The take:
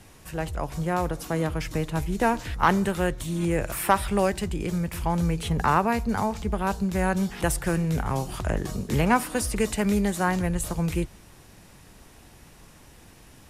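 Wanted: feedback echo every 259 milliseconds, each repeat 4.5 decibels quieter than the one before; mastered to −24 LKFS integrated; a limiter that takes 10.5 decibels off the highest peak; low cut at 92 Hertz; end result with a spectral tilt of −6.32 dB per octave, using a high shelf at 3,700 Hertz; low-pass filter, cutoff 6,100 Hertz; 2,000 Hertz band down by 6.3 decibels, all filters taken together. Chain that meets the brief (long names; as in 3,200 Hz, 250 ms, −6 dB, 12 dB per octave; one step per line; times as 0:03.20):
high-pass filter 92 Hz
low-pass filter 6,100 Hz
parametric band 2,000 Hz −7 dB
high-shelf EQ 3,700 Hz −7.5 dB
brickwall limiter −18 dBFS
repeating echo 259 ms, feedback 60%, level −4.5 dB
level +3.5 dB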